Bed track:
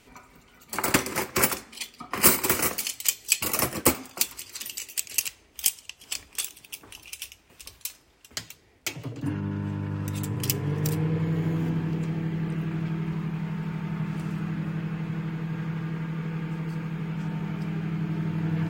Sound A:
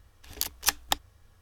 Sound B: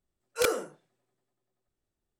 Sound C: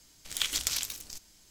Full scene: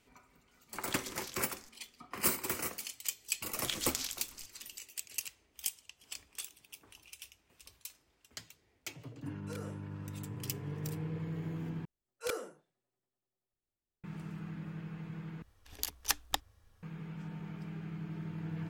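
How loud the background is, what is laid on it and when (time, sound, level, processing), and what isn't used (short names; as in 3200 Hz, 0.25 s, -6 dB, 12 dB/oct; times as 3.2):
bed track -12.5 dB
0.51 add C -15.5 dB
3.28 add C -7 dB
9.11 add B -14.5 dB + limiter -22.5 dBFS
11.85 replace with B -10.5 dB
15.42 replace with A -6.5 dB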